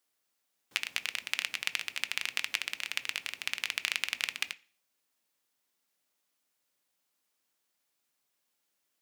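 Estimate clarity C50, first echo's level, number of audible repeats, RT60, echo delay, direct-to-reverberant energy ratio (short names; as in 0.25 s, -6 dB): 22.0 dB, none, none, 0.45 s, none, 12.0 dB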